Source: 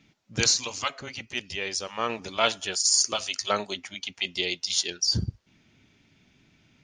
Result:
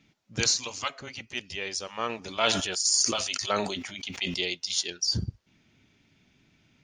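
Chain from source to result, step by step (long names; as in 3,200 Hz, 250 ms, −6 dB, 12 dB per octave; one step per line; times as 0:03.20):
0:02.25–0:04.52: level that may fall only so fast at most 46 dB per second
level −2.5 dB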